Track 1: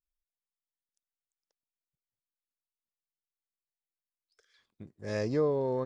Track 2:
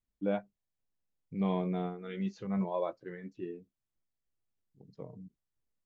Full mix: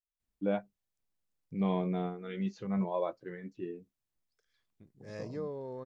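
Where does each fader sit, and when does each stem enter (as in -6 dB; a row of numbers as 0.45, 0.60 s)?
-11.0, +0.5 dB; 0.00, 0.20 s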